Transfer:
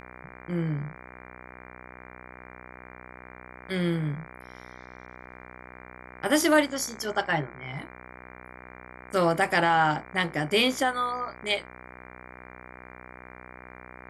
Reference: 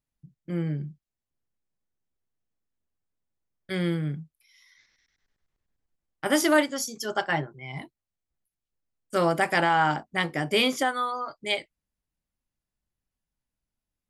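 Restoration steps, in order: de-hum 62.4 Hz, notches 38

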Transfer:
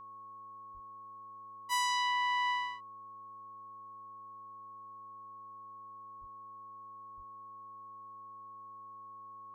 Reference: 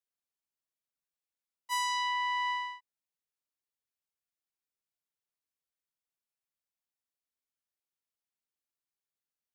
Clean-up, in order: de-hum 107.6 Hz, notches 5; notch 1100 Hz, Q 30; 0.73–0.85 HPF 140 Hz 24 dB/oct; 6.2–6.32 HPF 140 Hz 24 dB/oct; 7.16–7.28 HPF 140 Hz 24 dB/oct

